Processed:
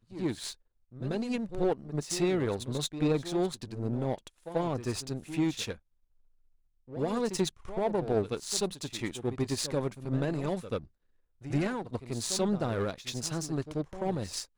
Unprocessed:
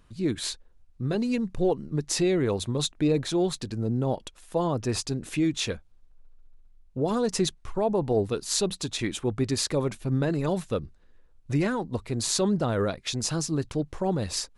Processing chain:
power curve on the samples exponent 1.4
echo ahead of the sound 87 ms −12 dB

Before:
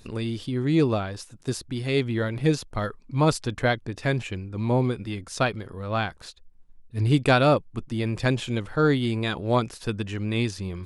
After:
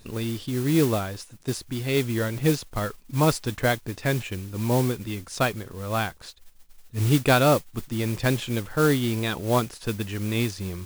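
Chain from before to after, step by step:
noise that follows the level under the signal 15 dB

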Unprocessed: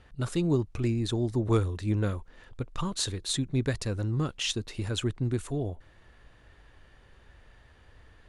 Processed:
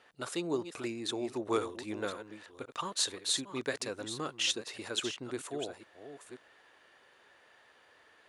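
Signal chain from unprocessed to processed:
delay that plays each chunk backwards 531 ms, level −10.5 dB
high-pass filter 450 Hz 12 dB per octave

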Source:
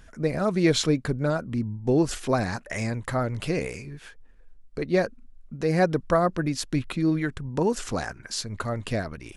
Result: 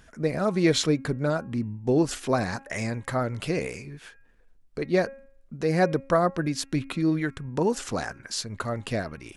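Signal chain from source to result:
low-shelf EQ 61 Hz −10 dB
hum removal 272.4 Hz, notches 10

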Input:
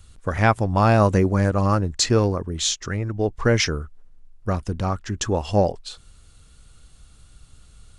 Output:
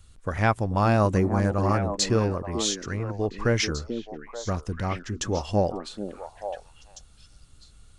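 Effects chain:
echo through a band-pass that steps 438 ms, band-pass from 290 Hz, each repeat 1.4 octaves, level −3.5 dB
level −4.5 dB

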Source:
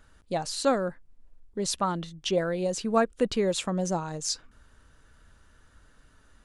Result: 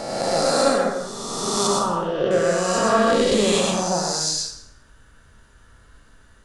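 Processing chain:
peak hold with a rise ahead of every peak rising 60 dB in 2.14 s
0:01.67–0:02.31: low-pass filter 1,400 Hz 12 dB per octave
dense smooth reverb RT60 0.69 s, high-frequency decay 0.85×, pre-delay 80 ms, DRR −0.5 dB

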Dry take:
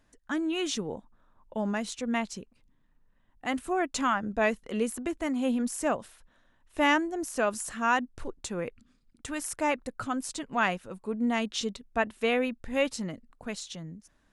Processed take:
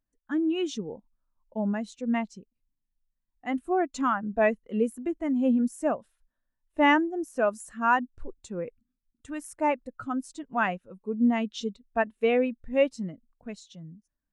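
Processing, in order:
every bin expanded away from the loudest bin 1.5 to 1
level +2 dB

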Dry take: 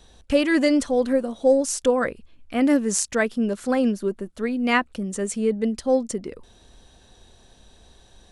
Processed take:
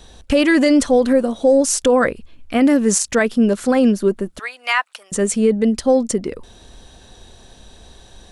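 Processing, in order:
0:04.39–0:05.12: high-pass filter 850 Hz 24 dB per octave
brickwall limiter −14.5 dBFS, peak gain reduction 9.5 dB
level +8.5 dB

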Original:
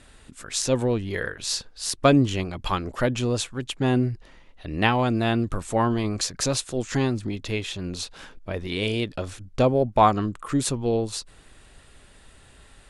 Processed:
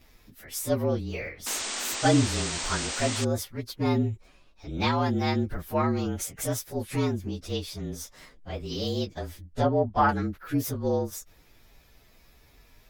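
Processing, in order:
partials spread apart or drawn together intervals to 113%
0:01.46–0:03.25: sound drawn into the spectrogram noise 200–8,900 Hz −31 dBFS
0:09.45–0:10.09: treble cut that deepens with the level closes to 2,700 Hz, closed at −16 dBFS
level −2 dB

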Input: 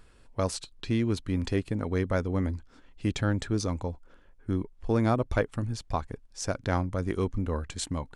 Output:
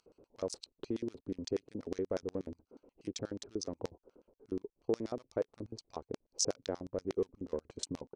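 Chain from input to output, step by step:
adaptive Wiener filter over 25 samples
downward compressor 6 to 1, threshold −36 dBFS, peak gain reduction 15 dB
auto-filter band-pass square 8.3 Hz 430–5,700 Hz
level +11.5 dB

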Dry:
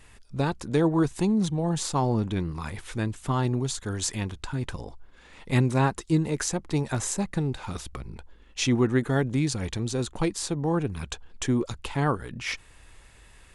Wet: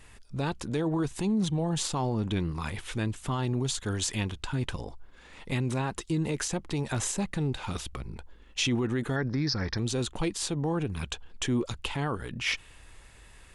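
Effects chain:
0:09.16–0:09.78: drawn EQ curve 730 Hz 0 dB, 1,800 Hz +7 dB, 3,000 Hz −17 dB, 5,300 Hz +14 dB, 7,500 Hz −30 dB
brickwall limiter −20.5 dBFS, peak gain reduction 10 dB
dynamic equaliser 3,000 Hz, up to +6 dB, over −53 dBFS, Q 2

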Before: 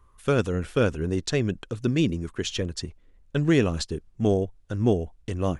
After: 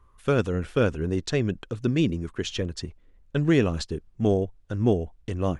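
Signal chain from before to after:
high-shelf EQ 6,300 Hz −7.5 dB

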